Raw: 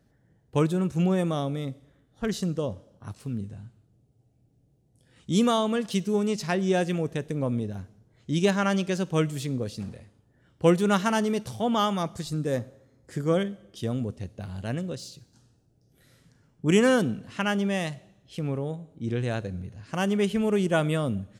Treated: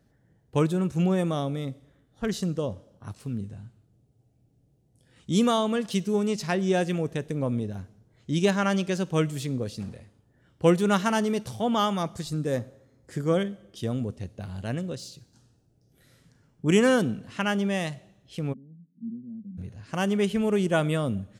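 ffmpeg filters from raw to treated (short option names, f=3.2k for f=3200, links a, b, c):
-filter_complex "[0:a]asplit=3[a][b][c];[a]afade=t=out:st=18.52:d=0.02[d];[b]asuperpass=centerf=210:order=4:qfactor=3.9,afade=t=in:st=18.52:d=0.02,afade=t=out:st=19.57:d=0.02[e];[c]afade=t=in:st=19.57:d=0.02[f];[d][e][f]amix=inputs=3:normalize=0"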